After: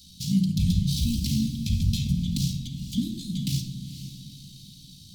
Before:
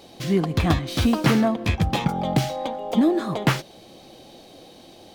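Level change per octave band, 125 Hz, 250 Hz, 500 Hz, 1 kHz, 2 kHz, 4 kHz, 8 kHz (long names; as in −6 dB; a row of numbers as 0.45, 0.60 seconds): −0.5 dB, −5.0 dB, below −30 dB, below −40 dB, −20.5 dB, −2.0 dB, +1.5 dB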